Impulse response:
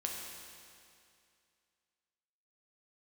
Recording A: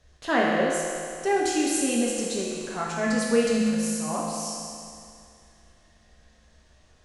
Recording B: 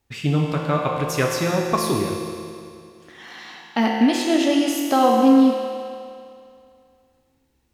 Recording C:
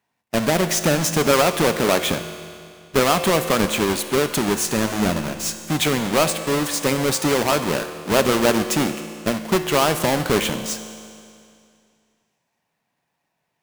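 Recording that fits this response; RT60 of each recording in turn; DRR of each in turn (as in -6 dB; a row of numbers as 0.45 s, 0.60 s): B; 2.4 s, 2.4 s, 2.4 s; -5.0 dB, -1.0 dB, 8.0 dB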